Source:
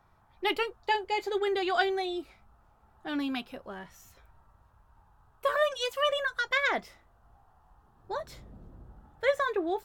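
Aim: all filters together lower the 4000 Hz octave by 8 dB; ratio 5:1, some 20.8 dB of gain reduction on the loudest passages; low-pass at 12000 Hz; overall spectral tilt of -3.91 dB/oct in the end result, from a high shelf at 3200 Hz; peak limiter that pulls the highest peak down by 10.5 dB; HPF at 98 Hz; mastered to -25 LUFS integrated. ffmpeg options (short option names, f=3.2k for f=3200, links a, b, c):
-af "highpass=98,lowpass=12k,highshelf=f=3.2k:g=-7,equalizer=f=4k:t=o:g=-6.5,acompressor=threshold=-46dB:ratio=5,volume=27.5dB,alimiter=limit=-15.5dB:level=0:latency=1"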